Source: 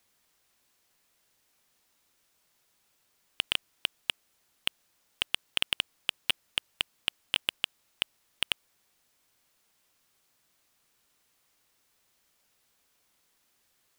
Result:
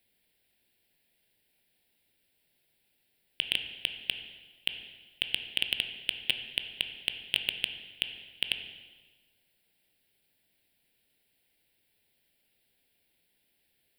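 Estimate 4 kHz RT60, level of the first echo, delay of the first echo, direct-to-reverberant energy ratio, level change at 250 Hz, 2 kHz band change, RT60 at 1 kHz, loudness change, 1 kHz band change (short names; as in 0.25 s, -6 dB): 1.2 s, none, none, 6.0 dB, +0.5 dB, +0.5 dB, 1.3 s, 0.0 dB, -9.5 dB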